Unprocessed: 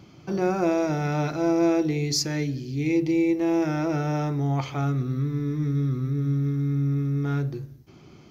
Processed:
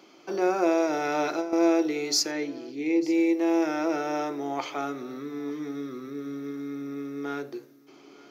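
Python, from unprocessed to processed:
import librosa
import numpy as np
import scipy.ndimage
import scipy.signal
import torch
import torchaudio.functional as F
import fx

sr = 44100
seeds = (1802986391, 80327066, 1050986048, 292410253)

y = scipy.signal.sosfilt(scipy.signal.butter(4, 310.0, 'highpass', fs=sr, output='sos'), x)
y = fx.over_compress(y, sr, threshold_db=-27.0, ratio=-0.5, at=(0.93, 1.53))
y = fx.high_shelf(y, sr, hz=fx.line((2.3, 5100.0), (3.1, 3500.0)), db=-11.5, at=(2.3, 3.1), fade=0.02)
y = y + 10.0 ** (-22.5 / 20.0) * np.pad(y, (int(896 * sr / 1000.0), 0))[:len(y)]
y = y * 10.0 ** (1.0 / 20.0)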